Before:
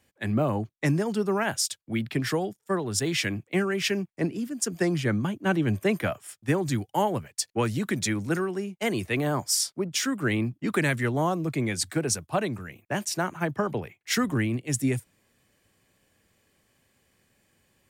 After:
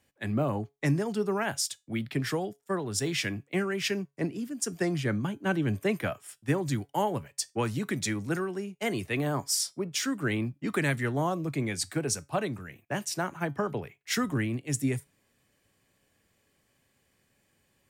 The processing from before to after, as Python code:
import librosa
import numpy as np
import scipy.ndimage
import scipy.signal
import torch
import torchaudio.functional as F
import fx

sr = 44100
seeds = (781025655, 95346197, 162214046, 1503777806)

y = fx.comb_fb(x, sr, f0_hz=140.0, decay_s=0.22, harmonics='all', damping=0.0, mix_pct=40)